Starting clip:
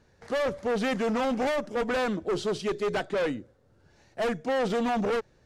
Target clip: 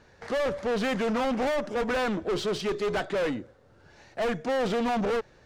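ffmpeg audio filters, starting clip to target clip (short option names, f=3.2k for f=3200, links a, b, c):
-filter_complex "[0:a]lowshelf=f=140:g=10.5,asplit=2[a][b];[b]highpass=f=720:p=1,volume=17dB,asoftclip=type=tanh:threshold=-21.5dB[c];[a][c]amix=inputs=2:normalize=0,lowpass=f=3.5k:p=1,volume=-6dB,volume=-1.5dB"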